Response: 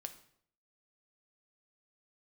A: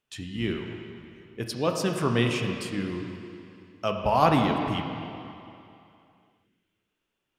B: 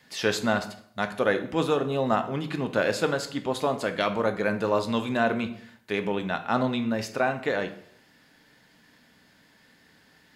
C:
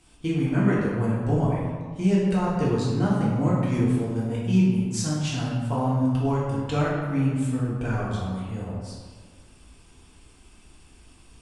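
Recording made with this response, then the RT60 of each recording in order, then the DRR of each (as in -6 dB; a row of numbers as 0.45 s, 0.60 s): B; 2.7 s, 0.65 s, 1.6 s; 2.5 dB, 7.0 dB, -7.5 dB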